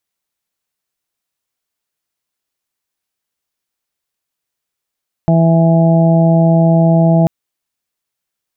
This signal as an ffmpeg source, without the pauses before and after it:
ffmpeg -f lavfi -i "aevalsrc='0.398*sin(2*PI*165*t)+0.119*sin(2*PI*330*t)+0.0562*sin(2*PI*495*t)+0.2*sin(2*PI*660*t)+0.075*sin(2*PI*825*t)':duration=1.99:sample_rate=44100" out.wav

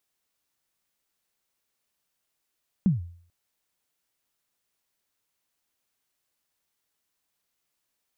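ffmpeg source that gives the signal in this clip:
ffmpeg -f lavfi -i "aevalsrc='0.188*pow(10,-3*t/0.53)*sin(2*PI*(210*0.148/log(86/210)*(exp(log(86/210)*min(t,0.148)/0.148)-1)+86*max(t-0.148,0)))':duration=0.44:sample_rate=44100" out.wav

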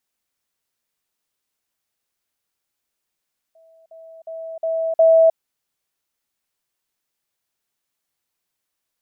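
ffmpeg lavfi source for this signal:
ffmpeg -f lavfi -i "aevalsrc='pow(10,(-49+10*floor(t/0.36))/20)*sin(2*PI*652*t)*clip(min(mod(t,0.36),0.31-mod(t,0.36))/0.005,0,1)':duration=1.8:sample_rate=44100" out.wav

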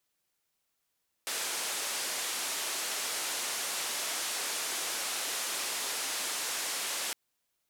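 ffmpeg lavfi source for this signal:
ffmpeg -f lavfi -i "anoisesrc=color=white:duration=5.86:sample_rate=44100:seed=1,highpass=frequency=370,lowpass=frequency=10000,volume=-26.2dB" out.wav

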